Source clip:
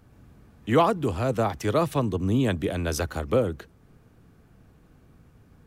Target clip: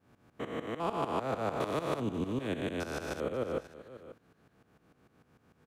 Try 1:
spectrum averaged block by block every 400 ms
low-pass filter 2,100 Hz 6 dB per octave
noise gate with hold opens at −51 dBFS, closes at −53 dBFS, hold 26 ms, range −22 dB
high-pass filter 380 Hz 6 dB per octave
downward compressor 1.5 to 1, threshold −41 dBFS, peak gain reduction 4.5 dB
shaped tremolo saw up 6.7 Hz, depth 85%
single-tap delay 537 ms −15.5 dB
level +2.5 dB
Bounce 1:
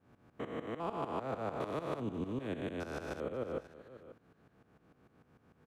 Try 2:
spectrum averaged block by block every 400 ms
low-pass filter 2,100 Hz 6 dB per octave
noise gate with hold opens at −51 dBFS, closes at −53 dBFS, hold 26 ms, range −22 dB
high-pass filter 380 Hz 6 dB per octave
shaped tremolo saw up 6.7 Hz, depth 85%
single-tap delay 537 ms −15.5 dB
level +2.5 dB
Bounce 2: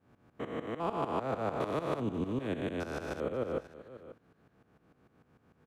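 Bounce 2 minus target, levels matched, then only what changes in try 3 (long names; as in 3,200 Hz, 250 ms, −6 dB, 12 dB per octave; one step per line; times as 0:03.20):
4,000 Hz band −4.0 dB
change: low-pass filter 5,600 Hz 6 dB per octave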